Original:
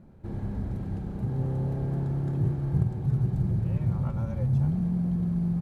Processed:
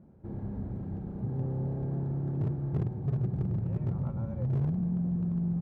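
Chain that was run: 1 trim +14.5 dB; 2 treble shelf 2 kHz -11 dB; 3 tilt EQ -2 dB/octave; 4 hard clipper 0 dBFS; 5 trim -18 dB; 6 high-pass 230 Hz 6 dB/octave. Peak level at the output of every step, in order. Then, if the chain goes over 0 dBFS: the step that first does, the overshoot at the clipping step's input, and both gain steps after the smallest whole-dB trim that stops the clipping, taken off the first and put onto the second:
+2.0 dBFS, +2.0 dBFS, +8.0 dBFS, 0.0 dBFS, -18.0 dBFS, -19.0 dBFS; step 1, 8.0 dB; step 1 +6.5 dB, step 5 -10 dB

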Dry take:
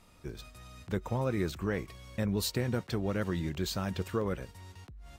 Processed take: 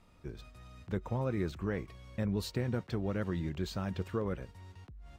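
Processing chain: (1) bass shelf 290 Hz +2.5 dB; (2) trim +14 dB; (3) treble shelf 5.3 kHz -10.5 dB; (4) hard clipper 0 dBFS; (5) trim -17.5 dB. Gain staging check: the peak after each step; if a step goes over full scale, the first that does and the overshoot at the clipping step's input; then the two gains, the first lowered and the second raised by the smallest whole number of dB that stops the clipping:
-17.0 dBFS, -3.0 dBFS, -3.5 dBFS, -3.5 dBFS, -21.0 dBFS; nothing clips

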